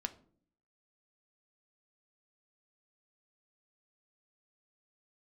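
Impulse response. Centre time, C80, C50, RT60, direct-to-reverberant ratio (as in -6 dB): 5 ms, 21.0 dB, 16.5 dB, 0.55 s, 7.0 dB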